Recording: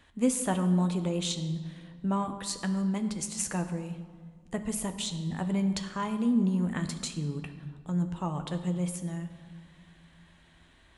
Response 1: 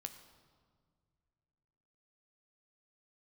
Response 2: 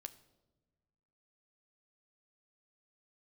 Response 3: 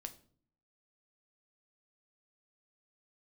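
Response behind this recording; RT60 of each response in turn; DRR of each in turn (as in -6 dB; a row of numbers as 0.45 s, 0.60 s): 1; no single decay rate, no single decay rate, 0.50 s; 6.5 dB, 10.5 dB, 7.0 dB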